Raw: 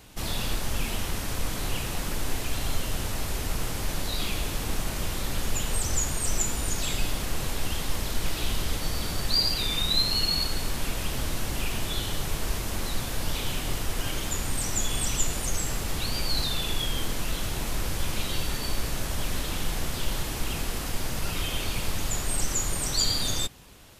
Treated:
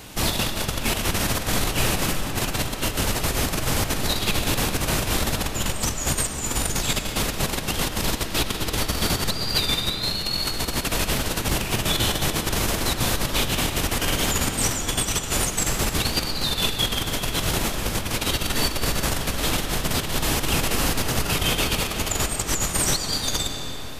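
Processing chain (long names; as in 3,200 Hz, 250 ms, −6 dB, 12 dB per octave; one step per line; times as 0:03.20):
compressor whose output falls as the input rises −29 dBFS, ratio −0.5
low-shelf EQ 64 Hz −8 dB
on a send: convolution reverb RT60 4.8 s, pre-delay 70 ms, DRR 5 dB
on the sum: level +7.5 dB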